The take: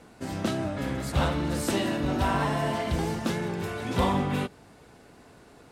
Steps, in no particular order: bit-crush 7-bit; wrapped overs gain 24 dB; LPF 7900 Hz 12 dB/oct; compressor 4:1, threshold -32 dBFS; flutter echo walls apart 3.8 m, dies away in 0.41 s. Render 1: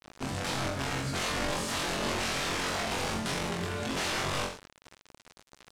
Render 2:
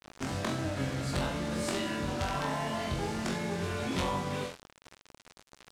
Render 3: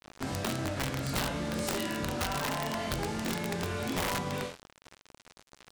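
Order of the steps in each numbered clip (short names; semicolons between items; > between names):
wrapped overs > compressor > flutter echo > bit-crush > LPF; compressor > wrapped overs > flutter echo > bit-crush > LPF; compressor > flutter echo > bit-crush > LPF > wrapped overs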